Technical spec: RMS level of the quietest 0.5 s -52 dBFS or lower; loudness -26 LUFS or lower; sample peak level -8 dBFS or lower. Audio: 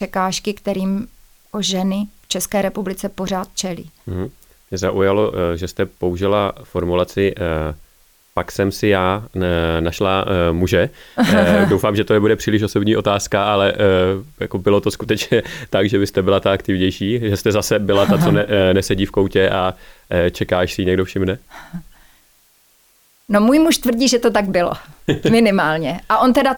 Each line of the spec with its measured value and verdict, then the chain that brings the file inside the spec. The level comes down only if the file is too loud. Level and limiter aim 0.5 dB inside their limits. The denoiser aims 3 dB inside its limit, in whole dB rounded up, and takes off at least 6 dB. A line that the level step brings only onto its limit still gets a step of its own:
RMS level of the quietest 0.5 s -55 dBFS: OK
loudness -17.5 LUFS: fail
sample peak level -3.0 dBFS: fail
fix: gain -9 dB

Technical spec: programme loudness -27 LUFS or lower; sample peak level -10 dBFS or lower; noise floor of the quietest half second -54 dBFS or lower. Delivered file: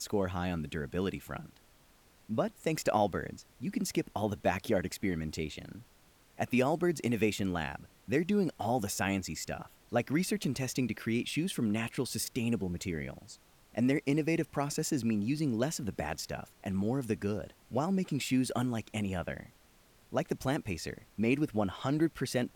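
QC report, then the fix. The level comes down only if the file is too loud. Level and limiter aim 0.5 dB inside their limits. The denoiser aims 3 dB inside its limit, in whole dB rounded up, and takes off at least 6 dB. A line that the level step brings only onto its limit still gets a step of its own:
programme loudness -33.5 LUFS: OK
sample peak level -15.5 dBFS: OK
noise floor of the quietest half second -63 dBFS: OK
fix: none

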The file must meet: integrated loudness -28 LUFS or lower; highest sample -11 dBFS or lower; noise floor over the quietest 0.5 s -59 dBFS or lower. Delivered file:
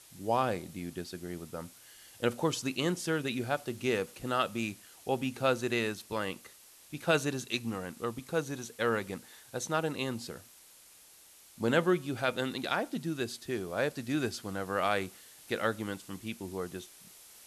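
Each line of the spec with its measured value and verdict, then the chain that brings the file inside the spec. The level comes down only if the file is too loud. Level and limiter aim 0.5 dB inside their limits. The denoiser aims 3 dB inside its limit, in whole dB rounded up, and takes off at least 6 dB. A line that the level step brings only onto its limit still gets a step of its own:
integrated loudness -33.5 LUFS: OK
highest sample -15.0 dBFS: OK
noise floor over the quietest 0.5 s -57 dBFS: fail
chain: denoiser 6 dB, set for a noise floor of -57 dBFS

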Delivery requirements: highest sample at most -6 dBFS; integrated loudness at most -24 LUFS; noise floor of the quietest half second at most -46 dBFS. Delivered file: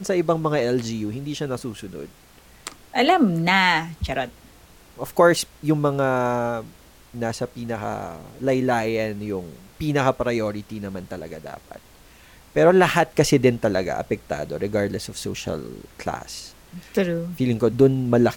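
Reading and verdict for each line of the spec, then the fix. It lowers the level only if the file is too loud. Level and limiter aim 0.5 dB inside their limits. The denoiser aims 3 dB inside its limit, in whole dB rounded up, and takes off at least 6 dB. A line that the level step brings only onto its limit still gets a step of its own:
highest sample -5.0 dBFS: fail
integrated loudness -22.5 LUFS: fail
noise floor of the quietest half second -50 dBFS: OK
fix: gain -2 dB

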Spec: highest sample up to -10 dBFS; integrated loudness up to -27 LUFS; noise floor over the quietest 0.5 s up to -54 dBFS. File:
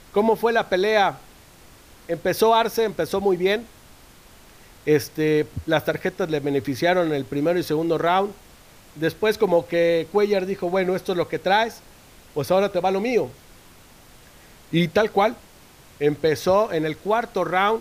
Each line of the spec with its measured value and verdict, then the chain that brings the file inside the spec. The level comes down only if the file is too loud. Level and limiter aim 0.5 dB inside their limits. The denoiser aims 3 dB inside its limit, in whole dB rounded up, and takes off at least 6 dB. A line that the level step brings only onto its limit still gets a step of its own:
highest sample -7.0 dBFS: fail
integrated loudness -22.0 LUFS: fail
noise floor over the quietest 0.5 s -49 dBFS: fail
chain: gain -5.5 dB

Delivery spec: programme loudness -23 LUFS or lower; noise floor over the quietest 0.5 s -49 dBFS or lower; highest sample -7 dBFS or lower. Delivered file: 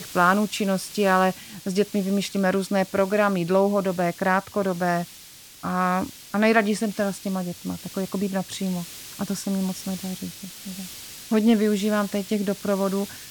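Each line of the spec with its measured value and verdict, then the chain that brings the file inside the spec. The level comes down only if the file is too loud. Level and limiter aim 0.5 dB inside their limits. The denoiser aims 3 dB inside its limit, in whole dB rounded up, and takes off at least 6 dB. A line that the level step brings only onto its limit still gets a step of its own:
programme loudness -24.0 LUFS: OK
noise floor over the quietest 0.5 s -46 dBFS: fail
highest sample -5.5 dBFS: fail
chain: denoiser 6 dB, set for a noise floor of -46 dBFS; limiter -7.5 dBFS

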